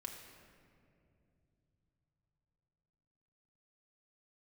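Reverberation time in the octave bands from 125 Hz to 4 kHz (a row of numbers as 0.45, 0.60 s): 5.4, 4.2, 3.2, 2.2, 2.0, 1.3 s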